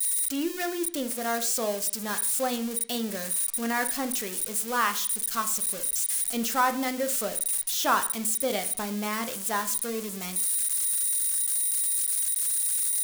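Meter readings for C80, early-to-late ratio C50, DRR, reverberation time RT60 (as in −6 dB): 17.0 dB, 14.0 dB, 8.0 dB, 0.45 s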